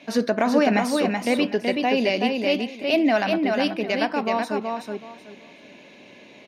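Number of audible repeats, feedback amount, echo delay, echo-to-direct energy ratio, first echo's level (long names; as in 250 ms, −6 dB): 3, 21%, 376 ms, −4.0 dB, −4.0 dB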